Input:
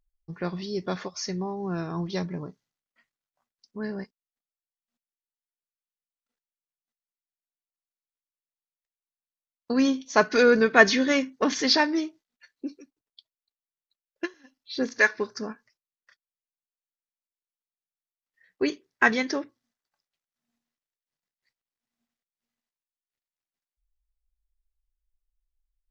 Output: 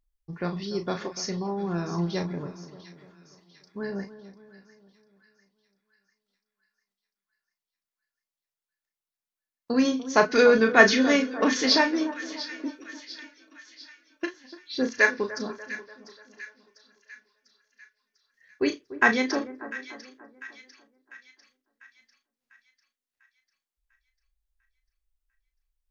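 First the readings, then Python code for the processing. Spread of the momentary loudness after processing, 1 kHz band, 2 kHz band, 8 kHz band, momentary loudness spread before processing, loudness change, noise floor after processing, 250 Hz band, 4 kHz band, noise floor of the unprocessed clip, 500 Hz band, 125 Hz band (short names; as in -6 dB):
24 LU, +1.0 dB, +1.0 dB, n/a, 18 LU, -0.5 dB, under -85 dBFS, +1.0 dB, +1.0 dB, under -85 dBFS, +1.0 dB, +1.5 dB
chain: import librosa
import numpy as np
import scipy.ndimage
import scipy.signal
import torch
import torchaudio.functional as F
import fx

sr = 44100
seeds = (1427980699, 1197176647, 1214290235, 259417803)

y = fx.doubler(x, sr, ms=35.0, db=-7.5)
y = fx.echo_split(y, sr, split_hz=1500.0, low_ms=293, high_ms=697, feedback_pct=52, wet_db=-14.0)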